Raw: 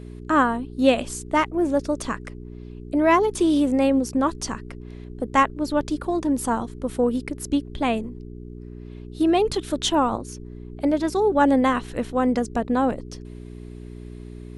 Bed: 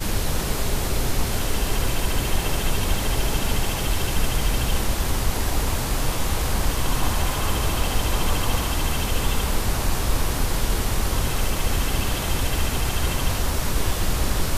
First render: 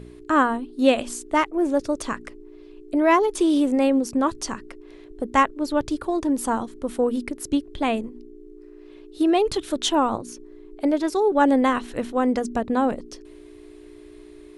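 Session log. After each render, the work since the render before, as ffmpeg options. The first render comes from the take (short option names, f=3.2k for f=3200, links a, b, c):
-af "bandreject=f=60:t=h:w=4,bandreject=f=120:t=h:w=4,bandreject=f=180:t=h:w=4,bandreject=f=240:t=h:w=4"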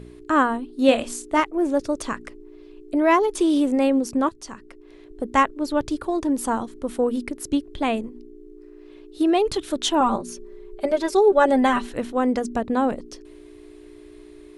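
-filter_complex "[0:a]asettb=1/sr,asplit=3[a][b][c];[a]atrim=end=0.864[d];[b]atrim=start=0.86:end=1.4,asetpts=PTS-STARTPTS,afade=t=in:d=0.004:c=qsin,afade=t=out:st=0.536:d=0.004:c=qsin,asplit=2[e][f];[f]adelay=26,volume=-7.5dB[g];[e][g]amix=inputs=2:normalize=0,atrim=end_sample=23814[h];[c]atrim=start=1.396[i];[d][h]acrossfade=d=0.004:c1=hsin:c2=qsin[j];[j][i]acrossfade=d=0.004:c1=qsin:c2=hsin,asettb=1/sr,asplit=3[k][l][m];[k]atrim=end=10.004[n];[l]atrim=start=10:end=11.89,asetpts=PTS-STARTPTS,afade=t=in:d=0.004:c=qsin,afade=t=out:st=1.886:d=0.004:c=qsin,aecho=1:1:5.1:0.88,atrim=end_sample=83349[o];[m]atrim=start=11.886[p];[n][o]acrossfade=d=0.004:c1=hsin:c2=qsin[q];[q][p]acrossfade=d=0.004:c1=qsin:c2=hsin,asplit=2[r][s];[r]atrim=end=4.29,asetpts=PTS-STARTPTS,afade=t=out:st=4.286:d=0.004:c=hsin:silence=0.251189[t];[s]atrim=start=4.29,asetpts=PTS-STARTPTS,afade=t=in:d=0.95:silence=0.251189[u];[t][u]concat=n=2:v=0:a=1"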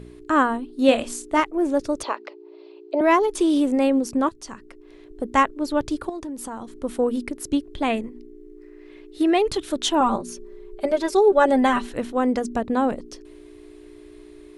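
-filter_complex "[0:a]asettb=1/sr,asplit=3[a][b][c];[a]atrim=end=2.034[d];[b]atrim=start=2.03:end=3.01,asetpts=PTS-STARTPTS,afade=t=in:d=0.004:c=qsin,afade=t=out:st=0.976:d=0.004:c=qsin,highpass=f=360:w=0.5412,highpass=f=360:w=1.3066,equalizer=f=370:t=q:w=4:g=4,equalizer=f=600:t=q:w=4:g=9,equalizer=f=870:t=q:w=4:g=9,equalizer=f=1.7k:t=q:w=4:g=-5,equalizer=f=2.6k:t=q:w=4:g=3,equalizer=f=4.3k:t=q:w=4:g=8,lowpass=f=4.7k:w=0.5412,lowpass=f=4.7k:w=1.3066[e];[c]atrim=start=3.006[f];[d][e]acrossfade=d=0.004:c1=hsin:c2=qsin[g];[g][f]acrossfade=d=0.004:c1=qsin:c2=hsin,asettb=1/sr,asplit=3[h][i][j];[h]atrim=end=6.094[k];[i]atrim=start=6.09:end=6.77,asetpts=PTS-STARTPTS,afade=t=in:d=0.004:c=qsin,afade=t=out:st=0.676:d=0.004:c=qsin,acompressor=threshold=-31dB:ratio=4:attack=3.2:release=140:knee=1:detection=peak[l];[j]atrim=start=6.766[m];[k][l]acrossfade=d=0.004:c1=hsin:c2=qsin[n];[n][m]acrossfade=d=0.004:c1=qsin:c2=hsin,asettb=1/sr,asplit=3[o][p][q];[o]atrim=end=7.904[r];[p]atrim=start=7.9:end=9.48,asetpts=PTS-STARTPTS,afade=t=in:d=0.004:c=qsin,afade=t=out:st=1.576:d=0.004:c=qsin,equalizer=f=2k:t=o:w=0.47:g=9.5[s];[q]atrim=start=9.476[t];[r][s]acrossfade=d=0.004:c1=hsin:c2=qsin[u];[u][t]acrossfade=d=0.004:c1=qsin:c2=hsin"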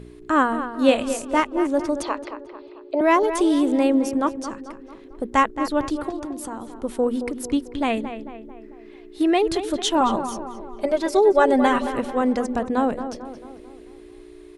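-filter_complex "[0:a]asplit=2[a][b];[b]adelay=222,lowpass=f=2.6k:p=1,volume=-10dB,asplit=2[c][d];[d]adelay=222,lowpass=f=2.6k:p=1,volume=0.51,asplit=2[e][f];[f]adelay=222,lowpass=f=2.6k:p=1,volume=0.51,asplit=2[g][h];[h]adelay=222,lowpass=f=2.6k:p=1,volume=0.51,asplit=2[i][j];[j]adelay=222,lowpass=f=2.6k:p=1,volume=0.51,asplit=2[k][l];[l]adelay=222,lowpass=f=2.6k:p=1,volume=0.51[m];[a][c][e][g][i][k][m]amix=inputs=7:normalize=0"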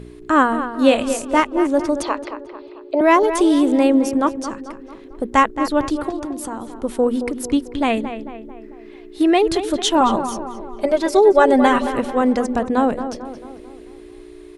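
-af "volume=4dB,alimiter=limit=-2dB:level=0:latency=1"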